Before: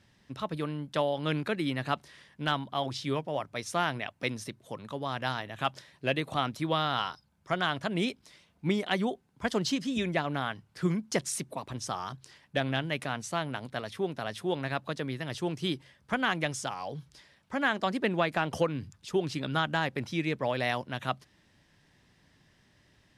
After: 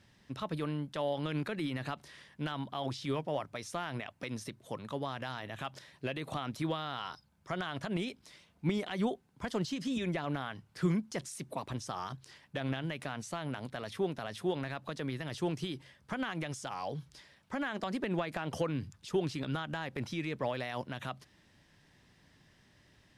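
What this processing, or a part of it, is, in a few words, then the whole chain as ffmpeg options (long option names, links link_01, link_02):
de-esser from a sidechain: -filter_complex "[0:a]asplit=2[link_01][link_02];[link_02]highpass=frequency=6600:poles=1,apad=whole_len=1022004[link_03];[link_01][link_03]sidechaincompress=threshold=-45dB:ratio=3:attack=0.6:release=58"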